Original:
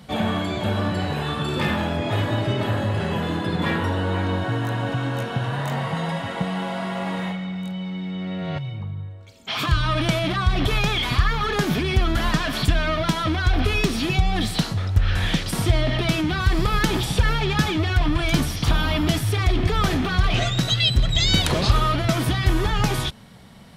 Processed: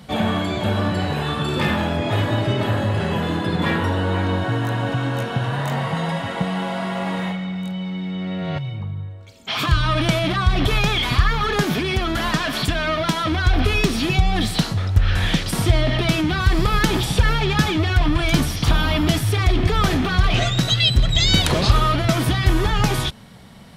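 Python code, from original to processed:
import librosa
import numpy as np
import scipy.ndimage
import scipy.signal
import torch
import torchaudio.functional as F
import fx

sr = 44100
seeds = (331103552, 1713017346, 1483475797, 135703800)

y = fx.low_shelf(x, sr, hz=100.0, db=-10.5, at=(11.63, 13.32))
y = y * librosa.db_to_amplitude(2.5)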